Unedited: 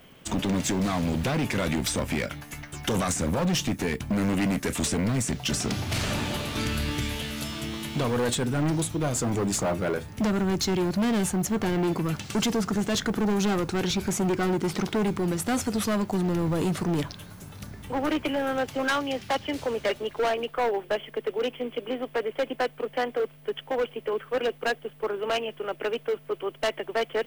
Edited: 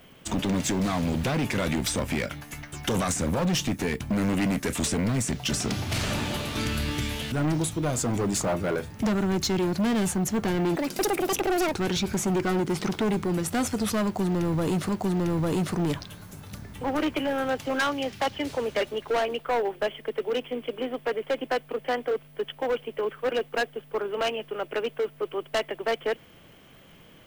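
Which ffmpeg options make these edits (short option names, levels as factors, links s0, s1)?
-filter_complex "[0:a]asplit=5[s0][s1][s2][s3][s4];[s0]atrim=end=7.322[s5];[s1]atrim=start=8.498:end=11.944[s6];[s2]atrim=start=11.94:end=13.67,asetpts=PTS-STARTPTS,asetrate=78498,aresample=44100,atrim=end_sample=42861,asetpts=PTS-STARTPTS[s7];[s3]atrim=start=13.666:end=16.832[s8];[s4]atrim=start=15.978[s9];[s5][s6]acrossfade=d=0.004:c1=hsin:c2=hsin[s10];[s10][s7]acrossfade=d=0.004:c1=hsin:c2=hsin[s11];[s11][s8]acrossfade=d=0.004:c1=hsin:c2=hsin[s12];[s12][s9]acrossfade=d=0.004:c1=hsin:c2=hsin"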